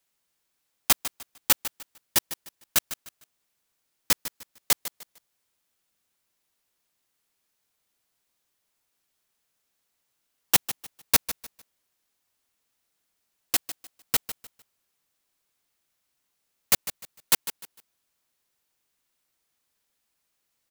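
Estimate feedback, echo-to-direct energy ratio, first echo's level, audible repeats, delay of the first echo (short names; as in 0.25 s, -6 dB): 28%, -12.5 dB, -13.0 dB, 2, 0.151 s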